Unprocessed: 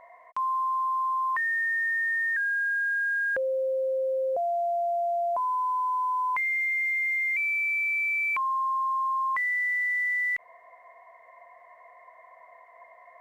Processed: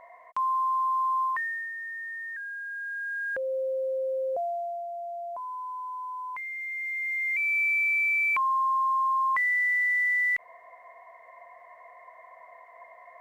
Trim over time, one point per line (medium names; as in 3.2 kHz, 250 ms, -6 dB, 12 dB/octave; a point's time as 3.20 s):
1.22 s +1 dB
1.73 s -10 dB
2.64 s -10 dB
3.55 s -2 dB
4.40 s -2 dB
4.88 s -9 dB
6.55 s -9 dB
7.60 s +2 dB